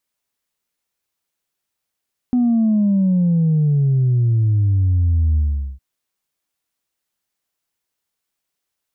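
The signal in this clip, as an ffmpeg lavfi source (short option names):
-f lavfi -i "aevalsrc='0.224*clip((3.46-t)/0.42,0,1)*tanh(1*sin(2*PI*250*3.46/log(65/250)*(exp(log(65/250)*t/3.46)-1)))/tanh(1)':d=3.46:s=44100"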